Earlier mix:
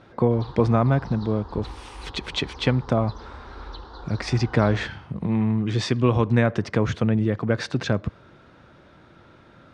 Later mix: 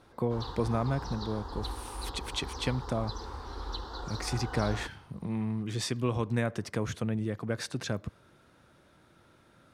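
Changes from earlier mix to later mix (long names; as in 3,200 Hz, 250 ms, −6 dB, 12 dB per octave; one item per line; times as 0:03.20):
speech −10.5 dB
master: remove high-frequency loss of the air 140 metres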